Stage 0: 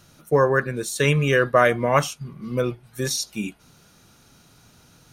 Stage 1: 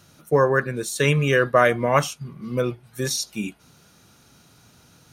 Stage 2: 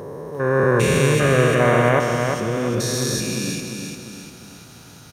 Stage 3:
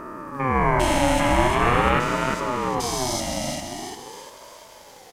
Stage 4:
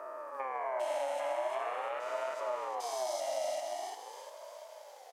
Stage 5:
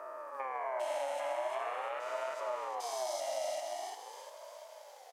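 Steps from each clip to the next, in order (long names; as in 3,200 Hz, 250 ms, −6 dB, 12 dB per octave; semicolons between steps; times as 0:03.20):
high-pass filter 52 Hz
spectrum averaged block by block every 400 ms; automatic gain control gain up to 12 dB; on a send: repeating echo 348 ms, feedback 46%, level −5 dB; on the sum: level −2 dB
ring modulator whose carrier an LFO sweeps 600 Hz, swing 30%, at 0.44 Hz
downward compressor, threshold −25 dBFS, peak gain reduction 11.5 dB; four-pole ladder high-pass 570 Hz, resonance 70%
low-shelf EQ 450 Hz −5 dB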